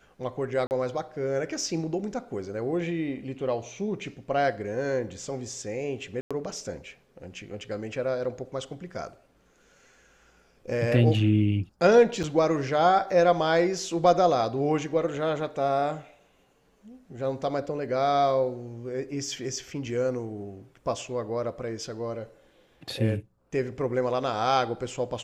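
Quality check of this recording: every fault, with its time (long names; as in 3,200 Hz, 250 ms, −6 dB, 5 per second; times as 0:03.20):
0:00.67–0:00.71: drop-out 39 ms
0:06.21–0:06.31: drop-out 96 ms
0:12.23–0:12.24: drop-out 6.6 ms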